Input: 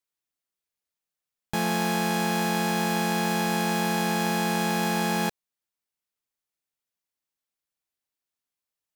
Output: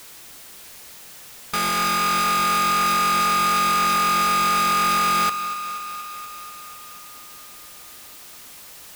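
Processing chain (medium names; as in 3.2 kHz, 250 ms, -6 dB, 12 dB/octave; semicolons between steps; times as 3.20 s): power-law waveshaper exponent 0.35; integer overflow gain 20 dB; thinning echo 240 ms, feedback 73%, high-pass 180 Hz, level -12 dB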